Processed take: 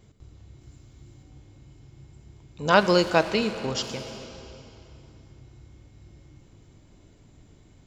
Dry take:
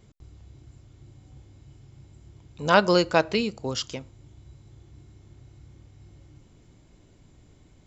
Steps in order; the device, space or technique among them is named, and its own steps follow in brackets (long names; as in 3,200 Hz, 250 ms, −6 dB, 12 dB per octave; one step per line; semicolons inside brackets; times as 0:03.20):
saturated reverb return (on a send at −4.5 dB: convolution reverb RT60 2.8 s, pre-delay 30 ms + soft clipping −27 dBFS, distortion −7 dB)
0:00.61–0:01.23: on the sum: high-shelf EQ 4,400 Hz +6 dB